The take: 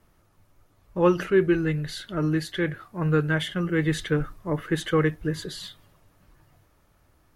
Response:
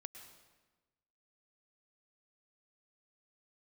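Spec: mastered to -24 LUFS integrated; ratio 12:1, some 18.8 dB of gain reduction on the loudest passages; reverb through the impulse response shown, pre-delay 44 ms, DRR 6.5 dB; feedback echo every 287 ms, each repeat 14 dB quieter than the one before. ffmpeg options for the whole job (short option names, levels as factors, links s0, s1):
-filter_complex "[0:a]acompressor=threshold=0.02:ratio=12,aecho=1:1:287|574:0.2|0.0399,asplit=2[s0][s1];[1:a]atrim=start_sample=2205,adelay=44[s2];[s1][s2]afir=irnorm=-1:irlink=0,volume=0.841[s3];[s0][s3]amix=inputs=2:normalize=0,volume=5.01"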